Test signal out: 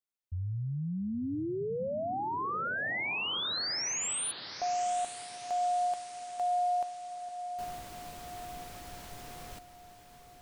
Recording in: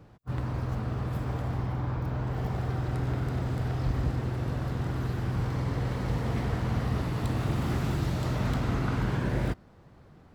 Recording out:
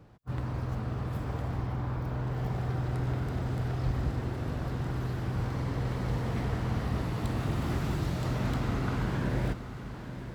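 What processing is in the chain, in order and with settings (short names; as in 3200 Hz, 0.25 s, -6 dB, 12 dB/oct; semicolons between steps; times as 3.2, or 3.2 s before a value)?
diffused feedback echo 0.886 s, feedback 52%, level -11 dB; gain -2 dB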